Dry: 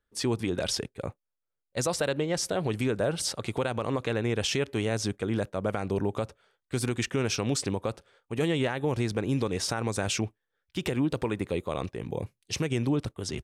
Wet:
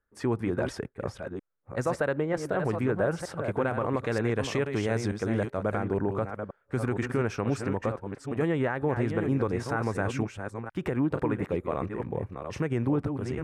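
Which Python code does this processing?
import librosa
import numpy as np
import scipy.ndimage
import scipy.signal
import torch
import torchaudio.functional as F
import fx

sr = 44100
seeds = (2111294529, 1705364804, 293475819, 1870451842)

y = fx.reverse_delay(x, sr, ms=465, wet_db=-7)
y = fx.high_shelf_res(y, sr, hz=2400.0, db=fx.steps((0.0, -13.5), (3.95, -7.5), (5.77, -13.5)), q=1.5)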